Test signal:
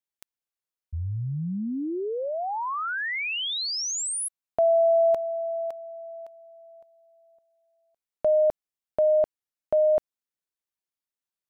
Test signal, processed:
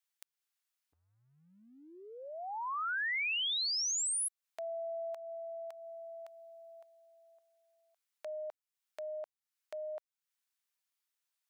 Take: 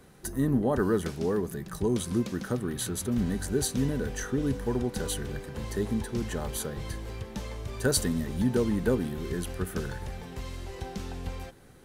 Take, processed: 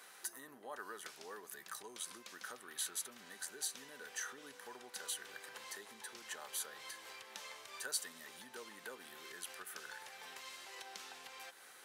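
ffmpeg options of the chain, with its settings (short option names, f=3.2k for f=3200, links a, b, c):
-af "acompressor=threshold=-42dB:ratio=2.5:attack=0.78:release=234:detection=rms,highpass=1.1k,volume=5dB"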